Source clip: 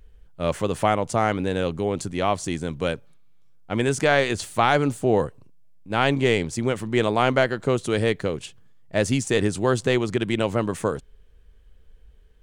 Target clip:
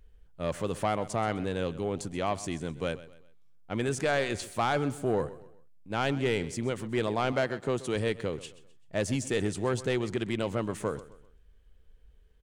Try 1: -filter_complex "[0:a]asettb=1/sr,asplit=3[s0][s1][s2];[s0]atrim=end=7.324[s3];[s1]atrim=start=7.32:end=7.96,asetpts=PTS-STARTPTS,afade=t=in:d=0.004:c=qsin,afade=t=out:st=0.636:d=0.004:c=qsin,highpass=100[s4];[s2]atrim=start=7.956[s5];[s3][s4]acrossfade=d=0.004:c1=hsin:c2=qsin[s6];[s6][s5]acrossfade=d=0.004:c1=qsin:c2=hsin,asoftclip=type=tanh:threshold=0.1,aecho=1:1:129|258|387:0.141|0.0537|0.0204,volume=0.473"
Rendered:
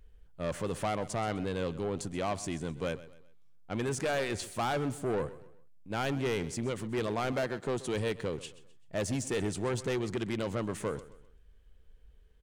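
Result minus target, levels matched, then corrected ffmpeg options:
saturation: distortion +9 dB
-filter_complex "[0:a]asettb=1/sr,asplit=3[s0][s1][s2];[s0]atrim=end=7.324[s3];[s1]atrim=start=7.32:end=7.96,asetpts=PTS-STARTPTS,afade=t=in:d=0.004:c=qsin,afade=t=out:st=0.636:d=0.004:c=qsin,highpass=100[s4];[s2]atrim=start=7.956[s5];[s3][s4]acrossfade=d=0.004:c1=hsin:c2=qsin[s6];[s6][s5]acrossfade=d=0.004:c1=qsin:c2=hsin,asoftclip=type=tanh:threshold=0.251,aecho=1:1:129|258|387:0.141|0.0537|0.0204,volume=0.473"

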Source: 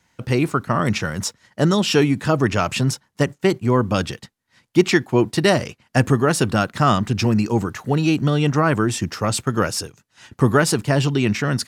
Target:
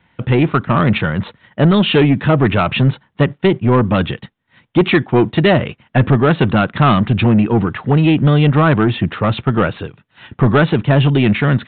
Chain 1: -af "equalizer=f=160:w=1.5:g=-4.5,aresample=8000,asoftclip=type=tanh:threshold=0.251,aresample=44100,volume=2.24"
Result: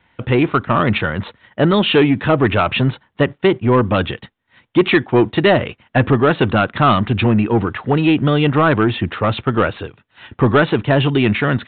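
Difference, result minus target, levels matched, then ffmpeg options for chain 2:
125 Hz band -3.0 dB
-af "equalizer=f=160:w=1.5:g=3,aresample=8000,asoftclip=type=tanh:threshold=0.251,aresample=44100,volume=2.24"

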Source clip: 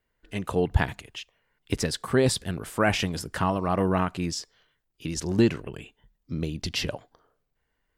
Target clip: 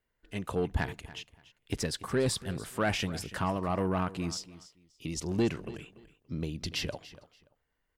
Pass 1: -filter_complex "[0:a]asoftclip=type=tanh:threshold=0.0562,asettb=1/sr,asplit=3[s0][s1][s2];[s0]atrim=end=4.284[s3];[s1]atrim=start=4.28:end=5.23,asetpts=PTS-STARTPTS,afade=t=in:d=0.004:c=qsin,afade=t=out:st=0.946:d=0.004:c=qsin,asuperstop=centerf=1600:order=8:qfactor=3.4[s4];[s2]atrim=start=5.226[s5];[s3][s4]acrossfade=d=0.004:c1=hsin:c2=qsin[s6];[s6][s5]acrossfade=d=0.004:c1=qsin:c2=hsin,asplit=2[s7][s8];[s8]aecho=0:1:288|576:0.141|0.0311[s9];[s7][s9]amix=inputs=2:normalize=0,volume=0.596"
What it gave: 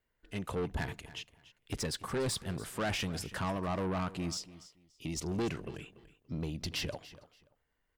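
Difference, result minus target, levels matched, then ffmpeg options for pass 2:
saturation: distortion +8 dB
-filter_complex "[0:a]asoftclip=type=tanh:threshold=0.168,asettb=1/sr,asplit=3[s0][s1][s2];[s0]atrim=end=4.284[s3];[s1]atrim=start=4.28:end=5.23,asetpts=PTS-STARTPTS,afade=t=in:d=0.004:c=qsin,afade=t=out:st=0.946:d=0.004:c=qsin,asuperstop=centerf=1600:order=8:qfactor=3.4[s4];[s2]atrim=start=5.226[s5];[s3][s4]acrossfade=d=0.004:c1=hsin:c2=qsin[s6];[s6][s5]acrossfade=d=0.004:c1=qsin:c2=hsin,asplit=2[s7][s8];[s8]aecho=0:1:288|576:0.141|0.0311[s9];[s7][s9]amix=inputs=2:normalize=0,volume=0.596"

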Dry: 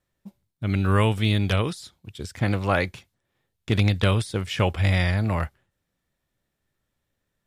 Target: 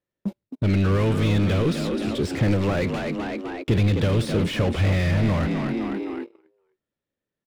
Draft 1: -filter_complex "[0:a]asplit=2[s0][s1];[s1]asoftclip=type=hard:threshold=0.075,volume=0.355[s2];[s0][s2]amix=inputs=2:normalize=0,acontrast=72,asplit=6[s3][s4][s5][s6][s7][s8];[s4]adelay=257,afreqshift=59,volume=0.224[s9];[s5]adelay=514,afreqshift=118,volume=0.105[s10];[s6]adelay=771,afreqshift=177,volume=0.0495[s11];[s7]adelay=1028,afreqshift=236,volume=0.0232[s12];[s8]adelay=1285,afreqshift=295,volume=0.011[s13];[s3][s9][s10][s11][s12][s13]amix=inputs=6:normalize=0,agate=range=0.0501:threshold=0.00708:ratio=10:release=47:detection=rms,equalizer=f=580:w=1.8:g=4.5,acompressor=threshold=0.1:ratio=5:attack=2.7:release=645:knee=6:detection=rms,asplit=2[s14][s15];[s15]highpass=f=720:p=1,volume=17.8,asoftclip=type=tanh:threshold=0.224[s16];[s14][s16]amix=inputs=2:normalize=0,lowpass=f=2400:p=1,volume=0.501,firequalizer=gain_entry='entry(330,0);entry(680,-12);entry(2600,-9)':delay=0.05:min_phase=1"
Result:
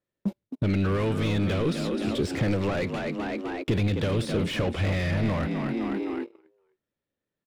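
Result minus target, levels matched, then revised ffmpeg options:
compression: peak gain reduction +9.5 dB
-filter_complex "[0:a]asplit=2[s0][s1];[s1]asoftclip=type=hard:threshold=0.075,volume=0.355[s2];[s0][s2]amix=inputs=2:normalize=0,acontrast=72,asplit=6[s3][s4][s5][s6][s7][s8];[s4]adelay=257,afreqshift=59,volume=0.224[s9];[s5]adelay=514,afreqshift=118,volume=0.105[s10];[s6]adelay=771,afreqshift=177,volume=0.0495[s11];[s7]adelay=1028,afreqshift=236,volume=0.0232[s12];[s8]adelay=1285,afreqshift=295,volume=0.011[s13];[s3][s9][s10][s11][s12][s13]amix=inputs=6:normalize=0,agate=range=0.0501:threshold=0.00708:ratio=10:release=47:detection=rms,equalizer=f=580:w=1.8:g=4.5,acompressor=threshold=0.398:ratio=5:attack=2.7:release=645:knee=6:detection=rms,asplit=2[s14][s15];[s15]highpass=f=720:p=1,volume=17.8,asoftclip=type=tanh:threshold=0.224[s16];[s14][s16]amix=inputs=2:normalize=0,lowpass=f=2400:p=1,volume=0.501,firequalizer=gain_entry='entry(330,0);entry(680,-12);entry(2600,-9)':delay=0.05:min_phase=1"

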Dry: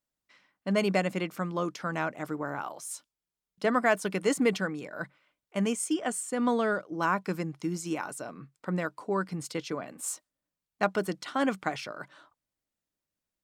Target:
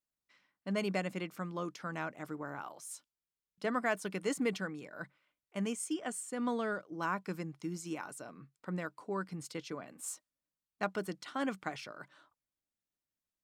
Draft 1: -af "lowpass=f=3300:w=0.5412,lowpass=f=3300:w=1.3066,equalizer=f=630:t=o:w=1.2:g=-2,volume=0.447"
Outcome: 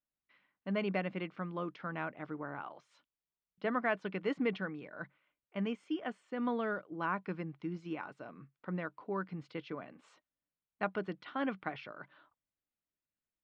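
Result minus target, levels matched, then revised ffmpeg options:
4 kHz band -3.5 dB
-af "equalizer=f=630:t=o:w=1.2:g=-2,volume=0.447"

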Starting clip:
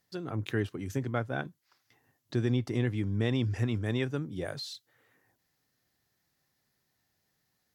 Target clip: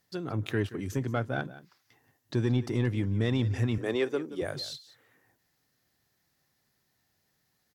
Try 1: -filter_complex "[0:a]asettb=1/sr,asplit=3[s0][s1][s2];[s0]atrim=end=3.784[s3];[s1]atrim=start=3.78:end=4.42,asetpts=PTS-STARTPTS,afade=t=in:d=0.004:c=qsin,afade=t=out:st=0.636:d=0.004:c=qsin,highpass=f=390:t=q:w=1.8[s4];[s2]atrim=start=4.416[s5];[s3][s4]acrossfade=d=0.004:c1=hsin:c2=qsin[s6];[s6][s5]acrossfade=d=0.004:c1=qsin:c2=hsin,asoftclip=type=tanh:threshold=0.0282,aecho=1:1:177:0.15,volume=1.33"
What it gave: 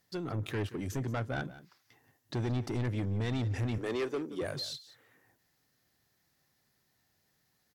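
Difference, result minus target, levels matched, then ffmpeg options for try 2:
saturation: distortion +13 dB
-filter_complex "[0:a]asettb=1/sr,asplit=3[s0][s1][s2];[s0]atrim=end=3.784[s3];[s1]atrim=start=3.78:end=4.42,asetpts=PTS-STARTPTS,afade=t=in:d=0.004:c=qsin,afade=t=out:st=0.636:d=0.004:c=qsin,highpass=f=390:t=q:w=1.8[s4];[s2]atrim=start=4.416[s5];[s3][s4]acrossfade=d=0.004:c1=hsin:c2=qsin[s6];[s6][s5]acrossfade=d=0.004:c1=qsin:c2=hsin,asoftclip=type=tanh:threshold=0.112,aecho=1:1:177:0.15,volume=1.33"

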